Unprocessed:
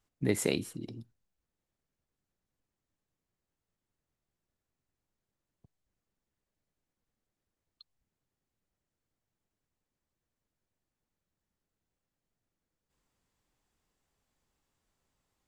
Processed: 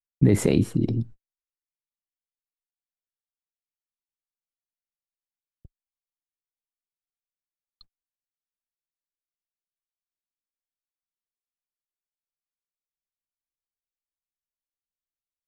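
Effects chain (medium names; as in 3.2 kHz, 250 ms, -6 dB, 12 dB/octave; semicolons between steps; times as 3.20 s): gate -59 dBFS, range -51 dB; tilt EQ -3 dB/octave; loudness maximiser +19 dB; trim -7.5 dB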